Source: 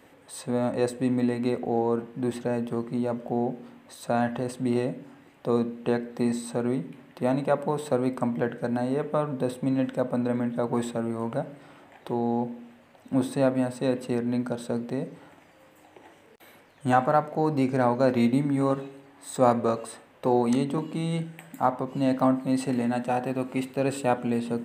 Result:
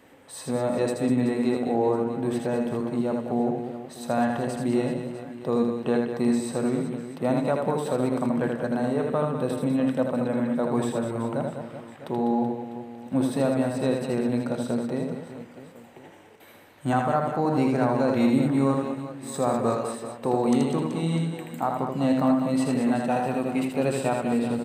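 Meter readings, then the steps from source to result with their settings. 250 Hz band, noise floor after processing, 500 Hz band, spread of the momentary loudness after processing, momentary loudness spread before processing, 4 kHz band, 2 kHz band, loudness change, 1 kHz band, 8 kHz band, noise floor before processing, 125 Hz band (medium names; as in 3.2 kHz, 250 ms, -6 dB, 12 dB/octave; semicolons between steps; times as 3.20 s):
+2.0 dB, -48 dBFS, +1.0 dB, 9 LU, 10 LU, +2.0 dB, +1.0 dB, +1.5 dB, 0.0 dB, +2.0 dB, -56 dBFS, +2.0 dB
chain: peak limiter -13.5 dBFS, peak gain reduction 7 dB; reverse bouncing-ball echo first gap 80 ms, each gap 1.5×, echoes 5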